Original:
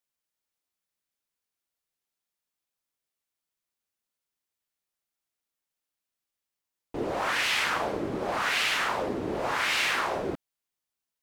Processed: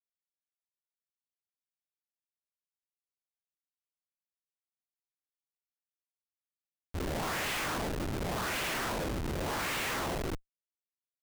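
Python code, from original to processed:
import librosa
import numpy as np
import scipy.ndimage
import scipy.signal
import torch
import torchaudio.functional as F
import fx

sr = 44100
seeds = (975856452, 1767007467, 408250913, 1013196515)

y = fx.schmitt(x, sr, flips_db=-29.0)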